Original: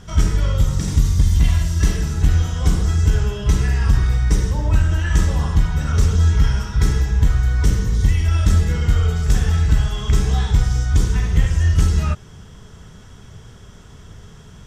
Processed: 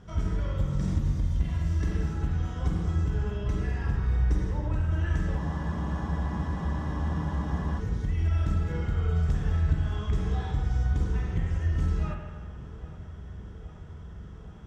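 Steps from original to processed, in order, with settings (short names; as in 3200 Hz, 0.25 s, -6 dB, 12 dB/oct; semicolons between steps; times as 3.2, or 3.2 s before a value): compressor, threshold -14 dBFS, peak gain reduction 6.5 dB; HPF 640 Hz 6 dB/oct; tilt -4.5 dB/oct; darkening echo 0.82 s, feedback 81%, low-pass 3200 Hz, level -18 dB; spring tank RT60 1.5 s, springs 43/49 ms, chirp 65 ms, DRR 2.5 dB; spectral freeze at 5.42, 2.38 s; gain -7.5 dB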